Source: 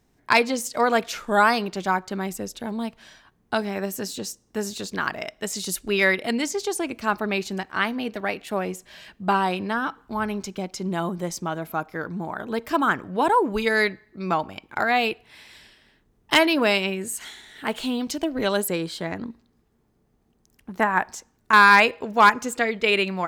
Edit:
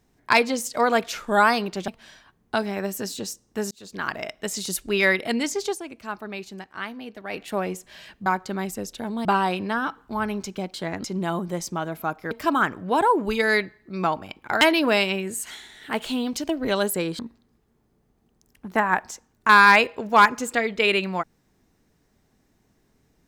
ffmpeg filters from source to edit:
-filter_complex "[0:a]asplit=12[a][b][c][d][e][f][g][h][i][j][k][l];[a]atrim=end=1.882[m];[b]atrim=start=2.868:end=4.7,asetpts=PTS-STARTPTS,afade=t=out:st=1.828:d=0.004:c=hsin[n];[c]atrim=start=4.7:end=6.94,asetpts=PTS-STARTPTS,afade=t=in:d=0.45,afade=t=out:st=2.01:d=0.23:c=exp:silence=0.354813[o];[d]atrim=start=6.94:end=8.1,asetpts=PTS-STARTPTS,volume=-9dB[p];[e]atrim=start=8.1:end=9.252,asetpts=PTS-STARTPTS,afade=t=in:d=0.23:c=exp:silence=0.354813[q];[f]atrim=start=1.878:end=2.872[r];[g]atrim=start=9.248:end=10.742[s];[h]atrim=start=18.928:end=19.232[t];[i]atrim=start=10.738:end=12.012[u];[j]atrim=start=12.578:end=14.882[v];[k]atrim=start=16.348:end=18.932[w];[l]atrim=start=19.228[x];[n][o][p][q]concat=n=4:v=0:a=1[y];[m][y]acrossfade=d=0.004:c1=hsin:c2=hsin[z];[z][r]acrossfade=d=0.004:c1=hsin:c2=hsin[aa];[aa][s]acrossfade=d=0.004:c1=hsin:c2=hsin[ab];[ab][t]acrossfade=d=0.004:c1=hsin:c2=hsin[ac];[ac][u]acrossfade=d=0.004:c1=hsin:c2=hsin[ad];[ad][v]acrossfade=d=0.004:c1=hsin:c2=hsin[ae];[ae][w]acrossfade=d=0.004:c1=hsin:c2=hsin[af];[af][x]acrossfade=d=0.004:c1=hsin:c2=hsin"

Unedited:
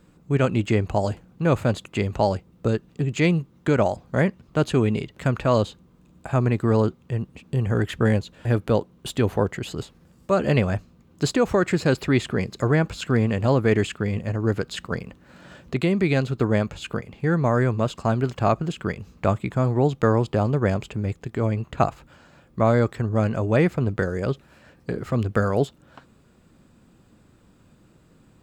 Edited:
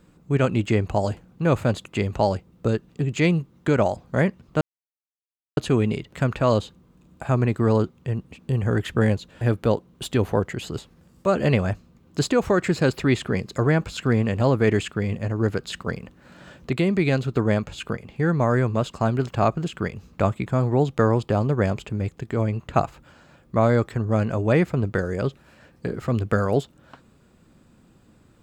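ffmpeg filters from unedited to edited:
-filter_complex "[0:a]asplit=2[a][b];[a]atrim=end=4.61,asetpts=PTS-STARTPTS,afade=t=out:st=4.606:d=0.004:c=hsin,apad=pad_dur=0.96[c];[b]atrim=start=4.61,asetpts=PTS-STARTPTS,afade=t=in:d=0.004:c=hsin[d];[c][d]concat=n=2:v=0:a=1"

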